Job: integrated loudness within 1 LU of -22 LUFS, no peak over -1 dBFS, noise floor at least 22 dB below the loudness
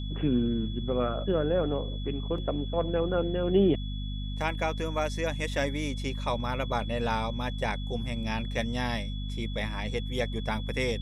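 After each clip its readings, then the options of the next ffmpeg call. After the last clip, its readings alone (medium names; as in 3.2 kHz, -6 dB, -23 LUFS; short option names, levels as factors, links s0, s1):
hum 50 Hz; highest harmonic 250 Hz; hum level -31 dBFS; steady tone 3.4 kHz; tone level -44 dBFS; loudness -30.0 LUFS; peak level -13.0 dBFS; loudness target -22.0 LUFS
-> -af "bandreject=f=50:t=h:w=6,bandreject=f=100:t=h:w=6,bandreject=f=150:t=h:w=6,bandreject=f=200:t=h:w=6,bandreject=f=250:t=h:w=6"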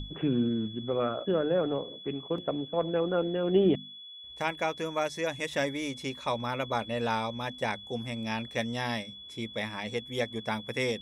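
hum not found; steady tone 3.4 kHz; tone level -44 dBFS
-> -af "bandreject=f=3400:w=30"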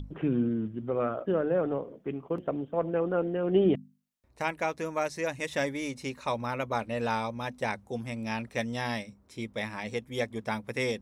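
steady tone not found; loudness -31.5 LUFS; peak level -13.5 dBFS; loudness target -22.0 LUFS
-> -af "volume=2.99"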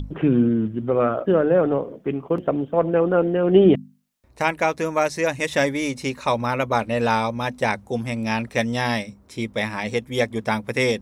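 loudness -22.0 LUFS; peak level -4.0 dBFS; noise floor -52 dBFS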